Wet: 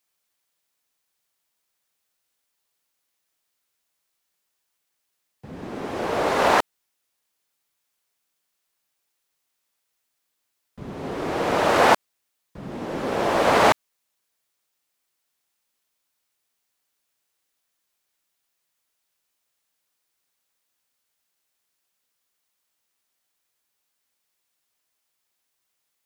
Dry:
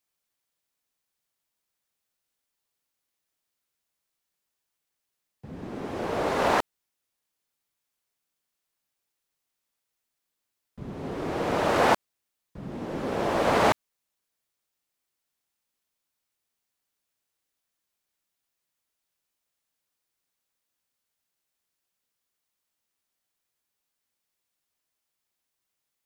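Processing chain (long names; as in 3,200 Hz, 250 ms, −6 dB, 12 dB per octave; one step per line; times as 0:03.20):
low-shelf EQ 330 Hz −6 dB
level +6 dB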